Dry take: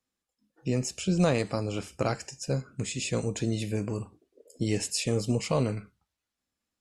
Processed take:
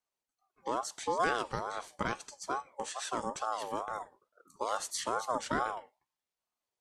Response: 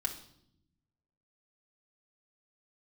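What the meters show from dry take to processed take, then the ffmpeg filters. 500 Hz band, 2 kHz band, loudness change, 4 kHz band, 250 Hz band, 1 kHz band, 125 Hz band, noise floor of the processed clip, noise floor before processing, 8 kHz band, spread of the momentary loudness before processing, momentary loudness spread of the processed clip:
-6.5 dB, +0.5 dB, -5.5 dB, -6.0 dB, -14.0 dB, +6.5 dB, -21.0 dB, under -85 dBFS, under -85 dBFS, -6.0 dB, 9 LU, 9 LU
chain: -af "aeval=exprs='val(0)*sin(2*PI*830*n/s+830*0.2/2.3*sin(2*PI*2.3*n/s))':c=same,volume=-3.5dB"

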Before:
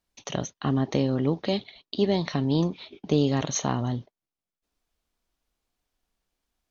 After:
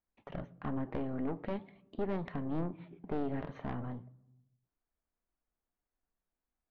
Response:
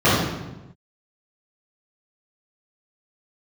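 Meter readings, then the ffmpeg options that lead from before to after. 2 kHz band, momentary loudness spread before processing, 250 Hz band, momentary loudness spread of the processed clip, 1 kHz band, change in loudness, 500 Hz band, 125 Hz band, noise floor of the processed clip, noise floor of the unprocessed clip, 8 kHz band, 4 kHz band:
-11.0 dB, 8 LU, -12.0 dB, 10 LU, -10.0 dB, -12.5 dB, -12.0 dB, -14.0 dB, under -85 dBFS, under -85 dBFS, n/a, -26.5 dB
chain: -filter_complex "[0:a]lowpass=f=2k:w=0.5412,lowpass=f=2k:w=1.3066,flanger=delay=3.8:depth=8.1:regen=88:speed=0.46:shape=sinusoidal,aeval=exprs='(tanh(25.1*val(0)+0.7)-tanh(0.7))/25.1':c=same,asplit=2[a][b];[1:a]atrim=start_sample=2205[c];[b][c]afir=irnorm=-1:irlink=0,volume=-47dB[d];[a][d]amix=inputs=2:normalize=0,volume=-1dB"

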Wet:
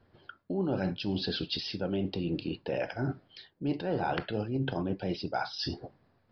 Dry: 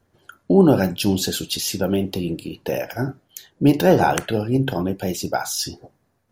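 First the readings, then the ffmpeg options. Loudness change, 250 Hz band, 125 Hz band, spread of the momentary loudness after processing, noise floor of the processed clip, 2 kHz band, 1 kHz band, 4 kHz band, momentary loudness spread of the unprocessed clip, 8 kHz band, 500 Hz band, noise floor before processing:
-12.5 dB, -13.0 dB, -11.5 dB, 7 LU, -69 dBFS, -10.5 dB, -12.0 dB, -8.5 dB, 12 LU, under -30 dB, -13.5 dB, -67 dBFS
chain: -af "areverse,acompressor=threshold=-29dB:ratio=6,areverse,aresample=11025,aresample=44100"

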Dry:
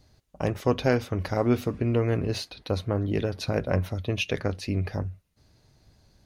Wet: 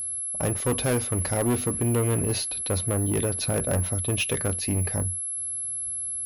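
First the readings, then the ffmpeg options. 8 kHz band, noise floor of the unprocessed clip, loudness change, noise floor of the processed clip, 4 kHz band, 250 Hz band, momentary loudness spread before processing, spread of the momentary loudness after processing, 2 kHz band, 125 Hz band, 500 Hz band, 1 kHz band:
+22.0 dB, -64 dBFS, +2.5 dB, -32 dBFS, +2.0 dB, -0.5 dB, 7 LU, 4 LU, +0.5 dB, +1.0 dB, -1.0 dB, -0.5 dB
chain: -af "aeval=exprs='val(0)+0.0282*sin(2*PI*11000*n/s)':c=same,asoftclip=type=hard:threshold=-22.5dB,volume=2.5dB"

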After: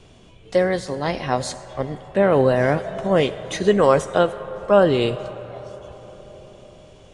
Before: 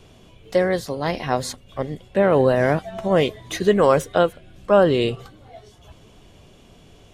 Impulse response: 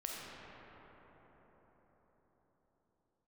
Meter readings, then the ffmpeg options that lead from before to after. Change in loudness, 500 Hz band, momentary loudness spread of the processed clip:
+0.5 dB, +0.5 dB, 16 LU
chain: -filter_complex "[0:a]aresample=22050,aresample=44100,asplit=2[a][b];[b]equalizer=f=250:t=o:w=1:g=-12,equalizer=f=4k:t=o:w=1:g=-3,equalizer=f=8k:t=o:w=1:g=12[c];[1:a]atrim=start_sample=2205,highshelf=f=8.5k:g=-10.5,adelay=15[d];[c][d]afir=irnorm=-1:irlink=0,volume=-12dB[e];[a][e]amix=inputs=2:normalize=0"

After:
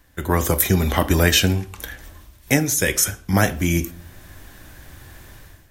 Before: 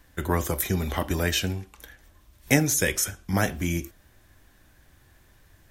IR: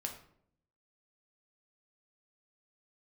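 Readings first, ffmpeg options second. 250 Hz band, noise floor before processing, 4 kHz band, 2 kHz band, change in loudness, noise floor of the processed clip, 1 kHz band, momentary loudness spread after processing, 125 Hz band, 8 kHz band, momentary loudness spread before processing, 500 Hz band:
+6.0 dB, -58 dBFS, +8.5 dB, +6.0 dB, +6.5 dB, -50 dBFS, +6.5 dB, 14 LU, +7.0 dB, +6.0 dB, 10 LU, +6.0 dB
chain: -filter_complex "[0:a]asplit=2[a][b];[1:a]atrim=start_sample=2205,highshelf=f=9.8k:g=11[c];[b][c]afir=irnorm=-1:irlink=0,volume=-11.5dB[d];[a][d]amix=inputs=2:normalize=0,dynaudnorm=f=130:g=5:m=14dB,volume=-1dB"

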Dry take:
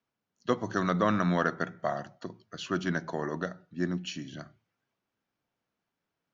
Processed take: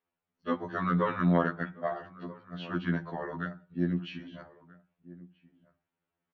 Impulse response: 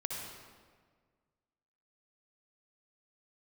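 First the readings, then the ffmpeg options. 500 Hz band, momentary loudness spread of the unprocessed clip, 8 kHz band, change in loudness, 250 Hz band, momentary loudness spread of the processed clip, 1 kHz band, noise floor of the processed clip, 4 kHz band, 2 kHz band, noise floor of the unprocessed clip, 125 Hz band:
-2.0 dB, 16 LU, n/a, -0.5 dB, +0.5 dB, 20 LU, -1.5 dB, under -85 dBFS, -6.5 dB, -2.5 dB, under -85 dBFS, +2.0 dB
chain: -filter_complex "[0:a]lowpass=f=3.3k:w=0.5412,lowpass=f=3.3k:w=1.3066,asplit=2[a][b];[b]adelay=1283,volume=-19dB,highshelf=f=4k:g=-28.9[c];[a][c]amix=inputs=2:normalize=0,afftfilt=real='re*2*eq(mod(b,4),0)':imag='im*2*eq(mod(b,4),0)':win_size=2048:overlap=0.75"

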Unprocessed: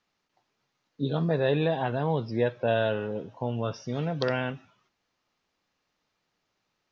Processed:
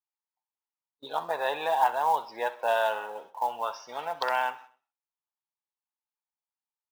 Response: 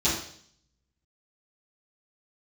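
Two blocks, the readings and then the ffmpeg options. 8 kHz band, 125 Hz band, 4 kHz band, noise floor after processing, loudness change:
n/a, under -30 dB, 0.0 dB, under -85 dBFS, -0.5 dB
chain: -filter_complex "[0:a]highpass=f=880:t=q:w=4.9,acrusher=bits=6:mode=log:mix=0:aa=0.000001,agate=range=-30dB:threshold=-47dB:ratio=16:detection=peak,asplit=2[a][b];[b]aecho=0:1:64|128|192|256:0.141|0.0664|0.0312|0.0147[c];[a][c]amix=inputs=2:normalize=0,volume=-1dB"

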